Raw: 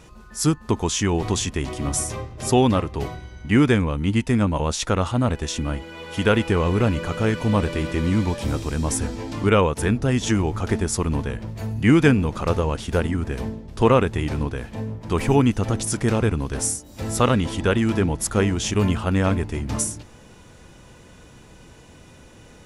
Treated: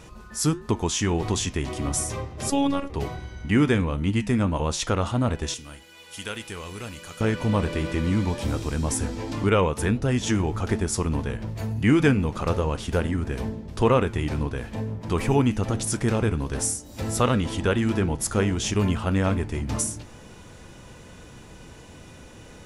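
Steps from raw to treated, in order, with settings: 5.54–7.21 pre-emphasis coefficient 0.9; flange 1.5 Hz, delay 8.5 ms, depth 4.7 ms, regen -81%; in parallel at +0.5 dB: compressor, threshold -36 dBFS, peak gain reduction 19.5 dB; 2.5–2.9 on the sum: robotiser 280 Hz

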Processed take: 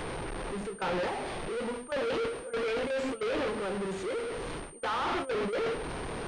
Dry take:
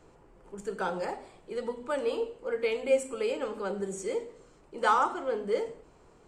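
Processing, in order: zero-crossing step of -28.5 dBFS; gate with hold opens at -20 dBFS; reverse; compressor 16:1, threshold -36 dBFS, peak gain reduction 19 dB; reverse; sample leveller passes 5; pulse-width modulation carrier 8800 Hz

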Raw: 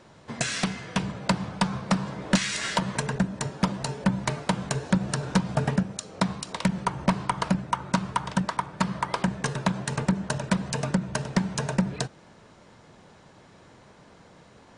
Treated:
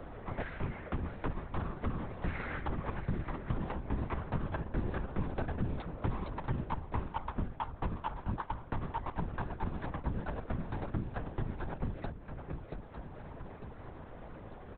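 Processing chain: median filter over 15 samples; Doppler pass-by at 5.3, 13 m/s, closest 7.2 m; HPF 160 Hz; comb 5.6 ms, depth 86%; reverse; compressor 5:1, threshold -44 dBFS, peak gain reduction 26 dB; reverse; air absorption 160 m; swung echo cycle 0.902 s, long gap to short 3:1, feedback 30%, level -14 dB; LPC vocoder at 8 kHz whisper; three-band squash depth 70%; gain +11.5 dB

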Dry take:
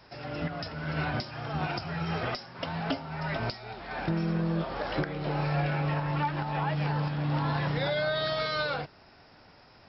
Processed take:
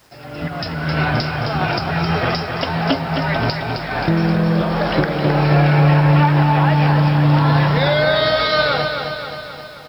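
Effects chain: AGC gain up to 10.5 dB; bit-crush 9-bit; feedback echo 0.264 s, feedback 58%, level -6 dB; gain +2 dB

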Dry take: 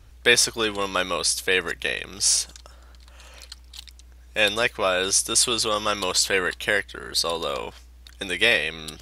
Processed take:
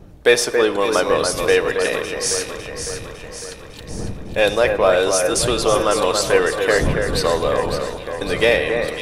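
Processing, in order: wind noise 100 Hz -31 dBFS; bell 540 Hz +14 dB 2.8 oct; in parallel at -8 dB: overloaded stage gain 6 dB; on the sum: high shelf 10000 Hz +5 dB; on a send: echo with dull and thin repeats by turns 0.277 s, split 2200 Hz, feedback 75%, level -5.5 dB; on the sum: shoebox room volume 1800 m³, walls mixed, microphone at 0.43 m; gain -7 dB

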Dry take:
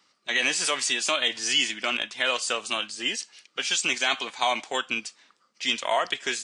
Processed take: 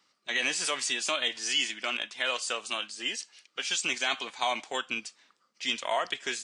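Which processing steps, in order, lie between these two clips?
1.29–3.71 low shelf 210 Hz -7 dB; gain -4.5 dB

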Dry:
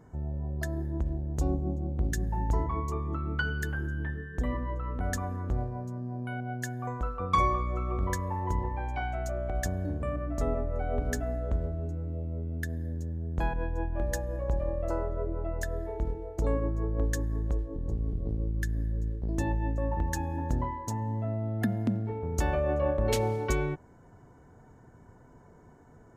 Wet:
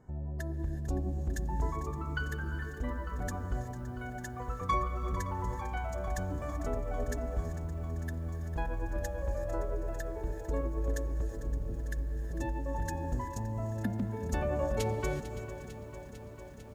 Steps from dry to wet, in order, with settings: time stretch by phase-locked vocoder 0.64×; on a send: echo 0.567 s -17.5 dB; on the sum: non-linear reverb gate 0.4 s rising, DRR 11.5 dB; lo-fi delay 0.449 s, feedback 80%, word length 9-bit, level -14 dB; gain -4 dB

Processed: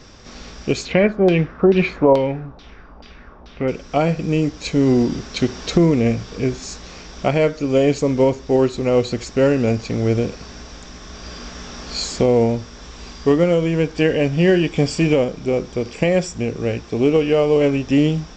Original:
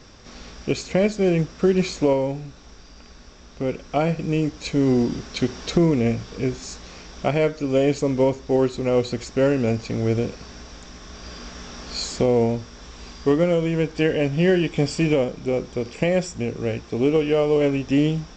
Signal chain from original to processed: 0.85–3.68 LFO low-pass saw down 2.3 Hz 760–4000 Hz; gain +3.5 dB

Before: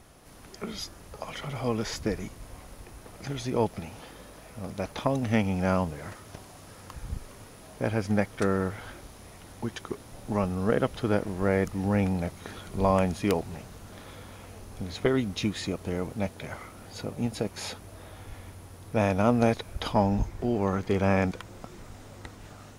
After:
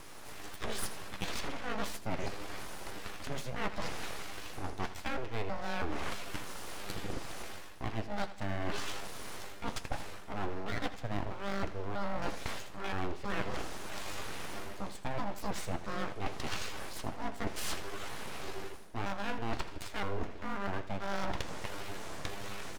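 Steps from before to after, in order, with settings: trilling pitch shifter +12 st, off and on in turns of 0.323 s; treble ducked by the level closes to 3000 Hz, closed at -23.5 dBFS; HPF 130 Hz 24 dB/oct; high shelf 11000 Hz -7.5 dB; reverse; compressor 12:1, threshold -39 dBFS, peak gain reduction 21.5 dB; reverse; full-wave rectifier; flange 1.1 Hz, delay 5.7 ms, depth 8 ms, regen -65%; on a send: feedback echo 81 ms, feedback 39%, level -14.5 dB; on the sum: gain +13 dB

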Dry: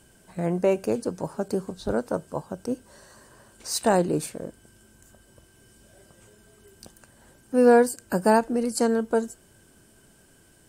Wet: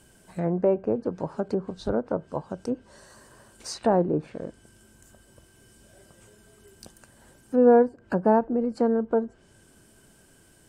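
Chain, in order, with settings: treble ducked by the level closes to 1000 Hz, closed at -21.5 dBFS

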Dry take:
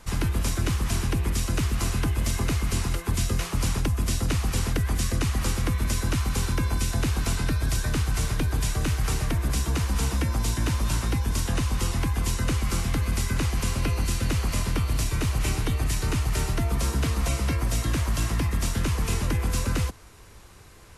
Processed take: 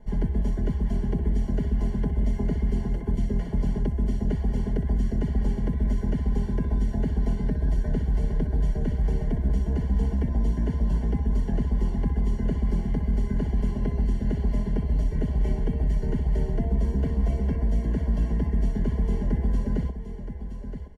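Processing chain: running mean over 35 samples; comb 4.8 ms, depth 74%; on a send: echo 0.971 s -10 dB

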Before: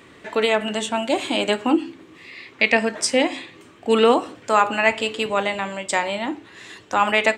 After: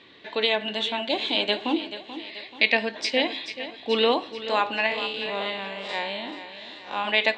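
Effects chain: 4.86–7.05 time blur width 0.11 s; ladder low-pass 4300 Hz, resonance 65%; low shelf 130 Hz -10 dB; notch 1300 Hz, Q 5.5; thinning echo 0.434 s, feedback 53%, high-pass 170 Hz, level -12 dB; gain +5.5 dB

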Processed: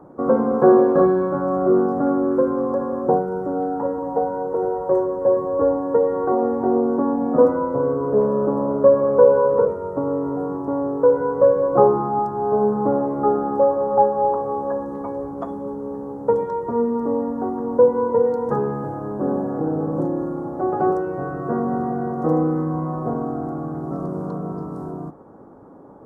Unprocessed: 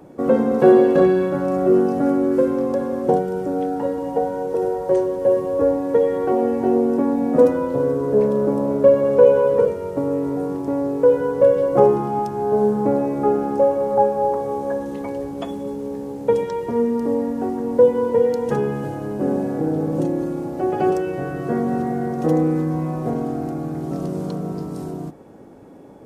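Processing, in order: resonant high shelf 1800 Hz -14 dB, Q 3; gain -2 dB

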